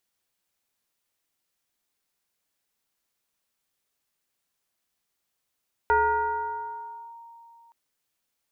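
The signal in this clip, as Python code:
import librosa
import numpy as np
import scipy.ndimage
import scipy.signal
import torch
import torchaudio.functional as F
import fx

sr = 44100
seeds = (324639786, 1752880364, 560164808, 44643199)

y = fx.fm2(sr, length_s=1.82, level_db=-16.5, carrier_hz=929.0, ratio=0.54, index=1.0, index_s=1.26, decay_s=2.95, shape='linear')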